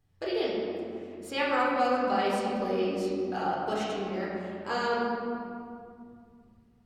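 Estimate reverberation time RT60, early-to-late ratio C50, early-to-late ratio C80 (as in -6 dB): 2.4 s, -1.5 dB, 0.5 dB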